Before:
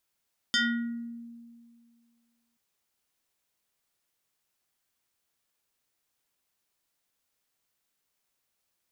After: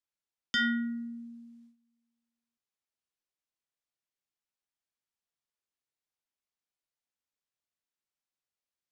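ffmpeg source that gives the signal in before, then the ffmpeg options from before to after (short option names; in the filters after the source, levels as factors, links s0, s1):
-f lavfi -i "aevalsrc='0.0891*pow(10,-3*t/2.09)*sin(2*PI*234*t+3.3*pow(10,-3*t/0.74)*sin(2*PI*7.14*234*t))':d=2.03:s=44100"
-filter_complex "[0:a]lowpass=7700,agate=range=0.2:threshold=0.00141:ratio=16:detection=peak,acrossover=split=190|570|3600[s0][s1][s2][s3];[s3]acompressor=threshold=0.00708:ratio=6[s4];[s0][s1][s2][s4]amix=inputs=4:normalize=0"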